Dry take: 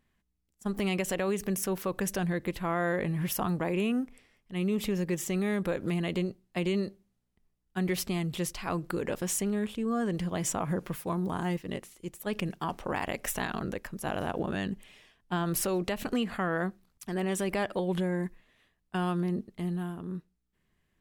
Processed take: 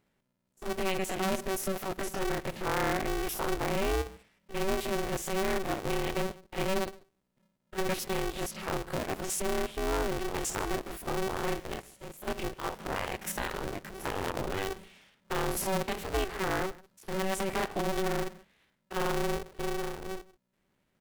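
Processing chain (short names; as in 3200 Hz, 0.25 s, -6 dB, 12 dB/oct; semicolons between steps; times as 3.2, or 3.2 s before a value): stepped spectrum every 50 ms; echo 0.146 s -21 dB; polarity switched at an audio rate 190 Hz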